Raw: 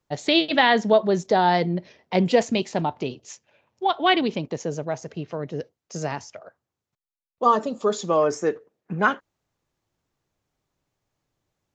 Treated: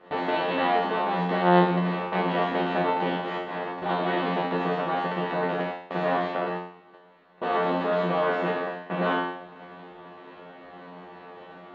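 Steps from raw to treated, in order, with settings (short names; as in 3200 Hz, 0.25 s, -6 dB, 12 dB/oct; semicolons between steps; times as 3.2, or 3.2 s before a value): per-bin compression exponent 0.2; gate -18 dBFS, range -18 dB; air absorption 400 m; resonator 89 Hz, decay 0.59 s, harmonics all, mix 100%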